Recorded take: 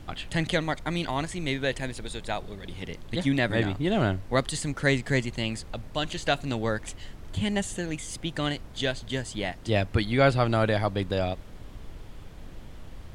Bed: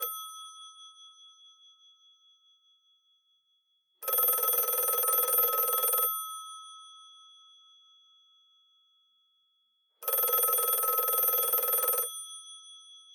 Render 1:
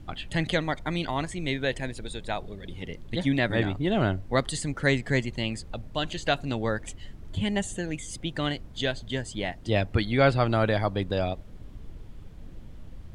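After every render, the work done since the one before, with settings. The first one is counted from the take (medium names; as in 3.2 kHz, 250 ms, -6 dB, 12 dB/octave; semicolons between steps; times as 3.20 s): noise reduction 8 dB, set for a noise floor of -44 dBFS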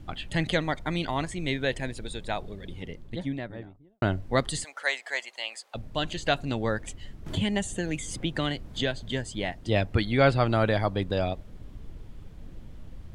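2.50–4.02 s: studio fade out; 4.64–5.75 s: Chebyshev high-pass 680 Hz, order 3; 7.26–9.12 s: three bands compressed up and down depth 70%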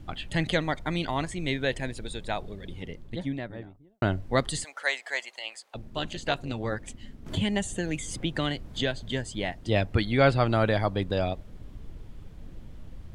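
5.39–7.32 s: AM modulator 230 Hz, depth 45%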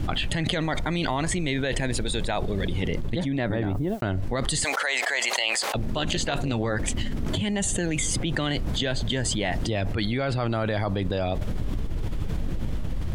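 peak limiter -19.5 dBFS, peak gain reduction 9.5 dB; level flattener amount 100%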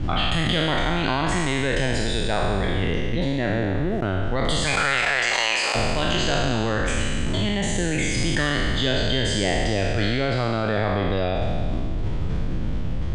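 spectral sustain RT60 2.05 s; distance through air 93 m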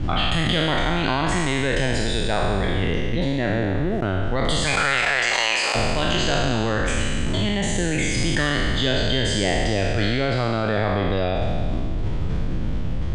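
trim +1 dB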